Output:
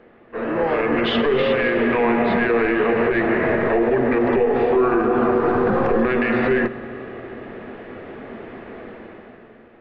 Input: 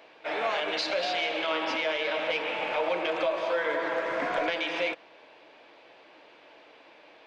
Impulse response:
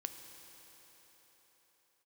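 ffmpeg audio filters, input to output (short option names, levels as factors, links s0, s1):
-filter_complex "[0:a]dynaudnorm=f=120:g=11:m=4.73,aemphasis=mode=reproduction:type=riaa,alimiter=limit=0.211:level=0:latency=1:release=107,asplit=2[s0][s1];[1:a]atrim=start_sample=2205,lowshelf=f=240:g=10[s2];[s1][s2]afir=irnorm=-1:irlink=0,volume=0.562[s3];[s0][s3]amix=inputs=2:normalize=0,asetrate=32667,aresample=44100"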